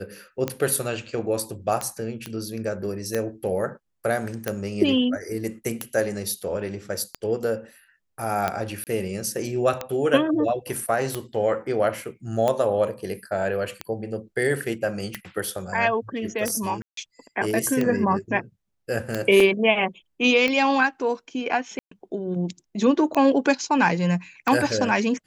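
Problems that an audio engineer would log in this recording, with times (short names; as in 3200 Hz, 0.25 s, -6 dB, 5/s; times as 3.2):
tick 45 rpm -11 dBFS
2.26 pop -16 dBFS
8.84–8.87 gap 28 ms
16.82–16.97 gap 0.153 s
19.4 gap 3.5 ms
21.79–21.91 gap 0.124 s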